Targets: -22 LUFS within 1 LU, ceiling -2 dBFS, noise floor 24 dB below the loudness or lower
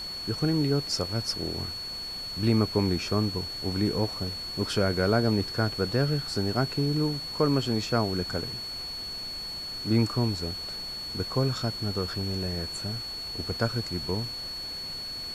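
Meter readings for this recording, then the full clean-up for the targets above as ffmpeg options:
steady tone 4400 Hz; tone level -34 dBFS; noise floor -37 dBFS; noise floor target -53 dBFS; loudness -28.5 LUFS; peak -11.0 dBFS; loudness target -22.0 LUFS
-> -af "bandreject=f=4.4k:w=30"
-af "afftdn=nr=16:nf=-37"
-af "volume=6.5dB"

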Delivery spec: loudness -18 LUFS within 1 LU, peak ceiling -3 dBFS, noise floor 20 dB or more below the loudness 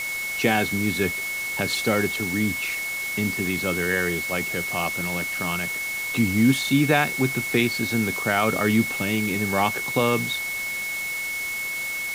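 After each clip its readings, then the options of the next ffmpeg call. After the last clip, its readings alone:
steady tone 2200 Hz; tone level -27 dBFS; noise floor -29 dBFS; noise floor target -43 dBFS; loudness -23.0 LUFS; peak -5.0 dBFS; loudness target -18.0 LUFS
-> -af "bandreject=f=2.2k:w=30"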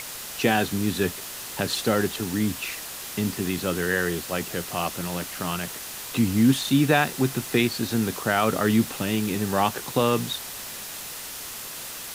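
steady tone none; noise floor -37 dBFS; noise floor target -46 dBFS
-> -af "afftdn=nr=9:nf=-37"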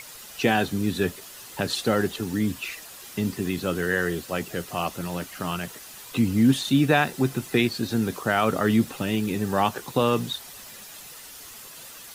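noise floor -43 dBFS; noise floor target -45 dBFS
-> -af "afftdn=nr=6:nf=-43"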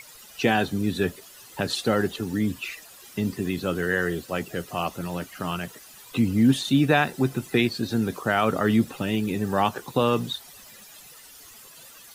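noise floor -48 dBFS; loudness -25.0 LUFS; peak -6.0 dBFS; loudness target -18.0 LUFS
-> -af "volume=7dB,alimiter=limit=-3dB:level=0:latency=1"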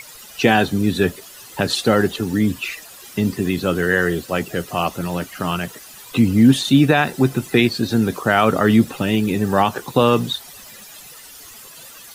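loudness -18.5 LUFS; peak -3.0 dBFS; noise floor -41 dBFS

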